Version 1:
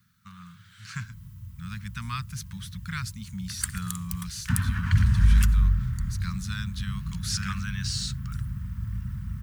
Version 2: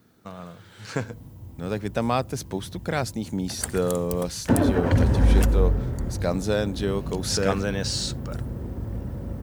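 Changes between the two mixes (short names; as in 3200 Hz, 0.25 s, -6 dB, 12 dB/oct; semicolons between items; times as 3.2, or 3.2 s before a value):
speech +3.5 dB; master: remove inverse Chebyshev band-stop 290–770 Hz, stop band 40 dB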